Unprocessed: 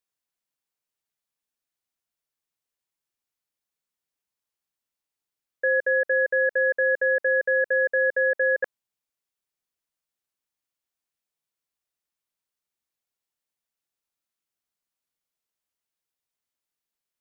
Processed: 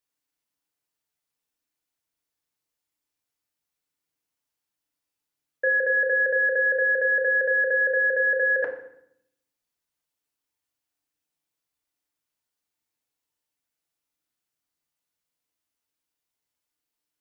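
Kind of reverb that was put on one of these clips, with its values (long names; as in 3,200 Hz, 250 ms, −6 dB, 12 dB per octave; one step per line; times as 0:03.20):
feedback delay network reverb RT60 0.72 s, low-frequency decay 1.5×, high-frequency decay 0.9×, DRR 1 dB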